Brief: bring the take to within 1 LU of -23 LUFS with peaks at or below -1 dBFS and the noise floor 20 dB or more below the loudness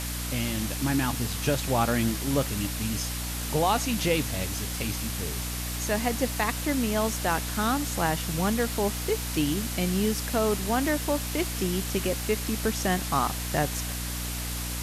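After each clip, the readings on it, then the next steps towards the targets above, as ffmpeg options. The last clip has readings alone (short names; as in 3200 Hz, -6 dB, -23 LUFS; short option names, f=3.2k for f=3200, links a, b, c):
hum 60 Hz; harmonics up to 300 Hz; hum level -32 dBFS; noise floor -33 dBFS; noise floor target -48 dBFS; loudness -27.5 LUFS; peak -11.5 dBFS; loudness target -23.0 LUFS
-> -af "bandreject=f=60:t=h:w=4,bandreject=f=120:t=h:w=4,bandreject=f=180:t=h:w=4,bandreject=f=240:t=h:w=4,bandreject=f=300:t=h:w=4"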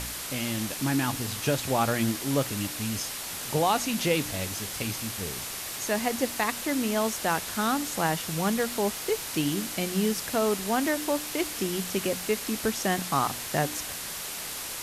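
hum none; noise floor -36 dBFS; noise floor target -48 dBFS
-> -af "afftdn=nr=12:nf=-36"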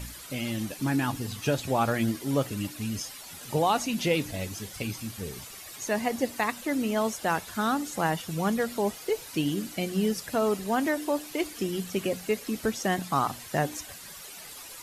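noise floor -44 dBFS; noise floor target -50 dBFS
-> -af "afftdn=nr=6:nf=-44"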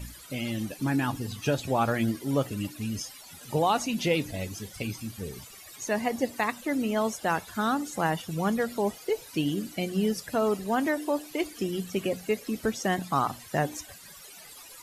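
noise floor -48 dBFS; noise floor target -50 dBFS
-> -af "afftdn=nr=6:nf=-48"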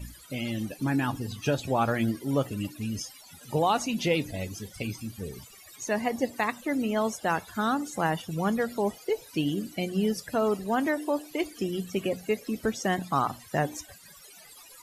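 noise floor -51 dBFS; loudness -29.5 LUFS; peak -13.0 dBFS; loudness target -23.0 LUFS
-> -af "volume=6.5dB"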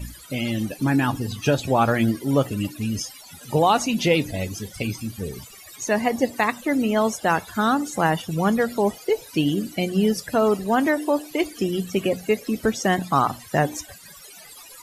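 loudness -23.0 LUFS; peak -6.5 dBFS; noise floor -45 dBFS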